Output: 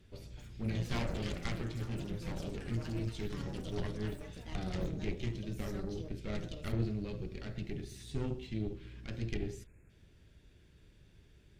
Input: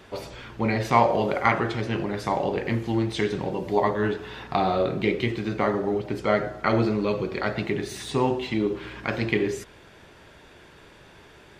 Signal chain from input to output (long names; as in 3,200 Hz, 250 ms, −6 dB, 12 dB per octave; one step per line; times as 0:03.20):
time-frequency box erased 0:09.67–0:09.90, 2,700–6,400 Hz
delay with pitch and tempo change per echo 290 ms, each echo +7 semitones, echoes 3, each echo −6 dB
harmonic generator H 6 −15 dB, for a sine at −4 dBFS
guitar amp tone stack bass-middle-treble 10-0-1
level +5.5 dB